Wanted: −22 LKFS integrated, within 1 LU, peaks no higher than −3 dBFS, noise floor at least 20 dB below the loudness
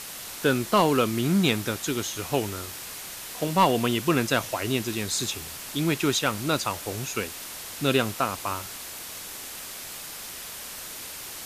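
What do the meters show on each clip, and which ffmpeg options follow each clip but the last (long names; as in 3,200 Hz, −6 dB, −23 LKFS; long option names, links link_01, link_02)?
background noise floor −39 dBFS; target noise floor −47 dBFS; integrated loudness −27.0 LKFS; sample peak −10.0 dBFS; target loudness −22.0 LKFS
→ -af "afftdn=noise_reduction=8:noise_floor=-39"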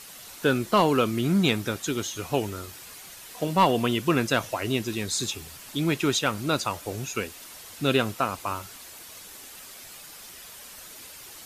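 background noise floor −45 dBFS; target noise floor −46 dBFS
→ -af "afftdn=noise_reduction=6:noise_floor=-45"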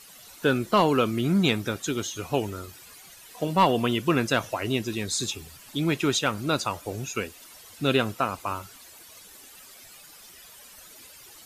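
background noise floor −49 dBFS; integrated loudness −26.0 LKFS; sample peak −10.0 dBFS; target loudness −22.0 LKFS
→ -af "volume=4dB"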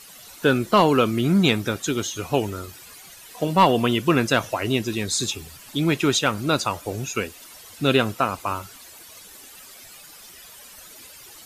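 integrated loudness −22.0 LKFS; sample peak −6.0 dBFS; background noise floor −45 dBFS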